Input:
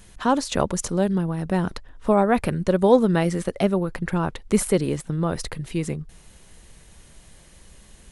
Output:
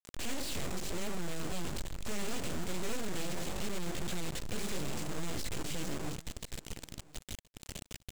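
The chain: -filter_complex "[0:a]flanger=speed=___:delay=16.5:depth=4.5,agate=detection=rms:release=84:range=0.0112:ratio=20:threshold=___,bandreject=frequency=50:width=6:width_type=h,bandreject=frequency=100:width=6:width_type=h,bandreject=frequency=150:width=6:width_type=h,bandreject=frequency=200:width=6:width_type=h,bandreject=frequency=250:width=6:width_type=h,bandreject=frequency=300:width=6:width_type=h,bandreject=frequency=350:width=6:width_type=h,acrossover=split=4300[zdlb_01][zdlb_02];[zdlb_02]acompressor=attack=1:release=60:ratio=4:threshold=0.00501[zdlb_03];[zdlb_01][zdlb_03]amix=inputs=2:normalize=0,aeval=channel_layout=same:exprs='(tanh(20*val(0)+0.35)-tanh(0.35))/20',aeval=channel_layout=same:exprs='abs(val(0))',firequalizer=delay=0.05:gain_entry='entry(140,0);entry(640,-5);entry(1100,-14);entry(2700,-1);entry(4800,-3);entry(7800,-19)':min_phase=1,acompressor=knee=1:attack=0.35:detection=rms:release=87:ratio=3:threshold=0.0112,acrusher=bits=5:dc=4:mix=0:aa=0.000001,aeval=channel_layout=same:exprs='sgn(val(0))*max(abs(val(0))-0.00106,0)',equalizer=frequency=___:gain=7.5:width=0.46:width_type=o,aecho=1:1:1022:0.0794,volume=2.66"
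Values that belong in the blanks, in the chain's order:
0.75, 0.00316, 7500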